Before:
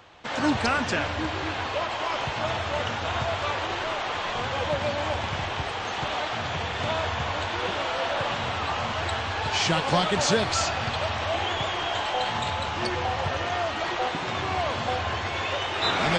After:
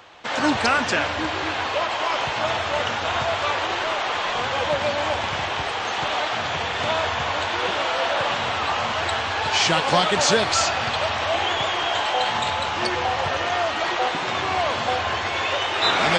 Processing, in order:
low-shelf EQ 220 Hz −10 dB
level +5.5 dB

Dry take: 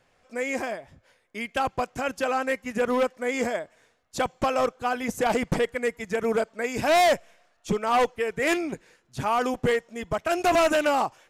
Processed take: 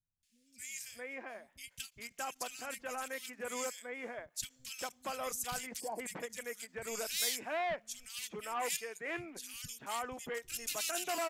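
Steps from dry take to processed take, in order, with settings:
first-order pre-emphasis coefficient 0.9
three-band delay without the direct sound lows, highs, mids 230/630 ms, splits 170/2,400 Hz
gain on a spectral selection 0:05.80–0:06.00, 1,100–4,200 Hz −21 dB
every ending faded ahead of time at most 420 dB per second
level +1 dB

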